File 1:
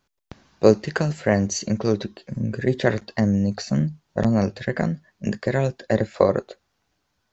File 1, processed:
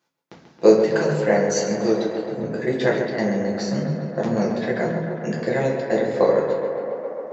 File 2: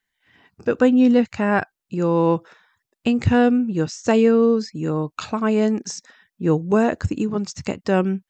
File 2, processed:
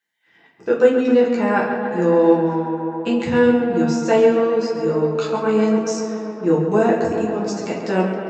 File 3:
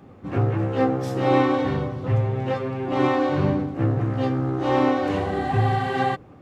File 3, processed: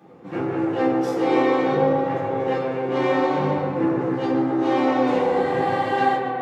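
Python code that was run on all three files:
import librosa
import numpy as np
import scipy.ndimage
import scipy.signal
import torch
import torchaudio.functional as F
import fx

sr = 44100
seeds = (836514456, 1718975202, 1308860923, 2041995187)

p1 = scipy.signal.sosfilt(scipy.signal.butter(2, 220.0, 'highpass', fs=sr, output='sos'), x)
p2 = p1 + fx.echo_tape(p1, sr, ms=135, feedback_pct=89, wet_db=-6.5, lp_hz=3300.0, drive_db=4.0, wow_cents=22, dry=0)
p3 = fx.room_shoebox(p2, sr, seeds[0], volume_m3=39.0, walls='mixed', distance_m=0.79)
y = p3 * librosa.db_to_amplitude(-4.0)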